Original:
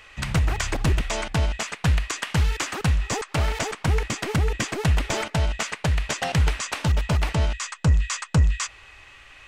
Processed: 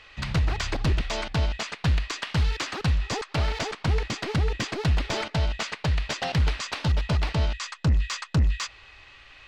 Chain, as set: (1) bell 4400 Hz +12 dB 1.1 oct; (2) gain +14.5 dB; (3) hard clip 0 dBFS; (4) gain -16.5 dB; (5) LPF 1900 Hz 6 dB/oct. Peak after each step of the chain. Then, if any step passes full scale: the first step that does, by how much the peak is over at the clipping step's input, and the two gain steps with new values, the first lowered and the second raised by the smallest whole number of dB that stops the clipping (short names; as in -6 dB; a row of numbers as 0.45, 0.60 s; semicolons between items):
-5.0, +9.5, 0.0, -16.5, -16.5 dBFS; step 2, 9.5 dB; step 2 +4.5 dB, step 4 -6.5 dB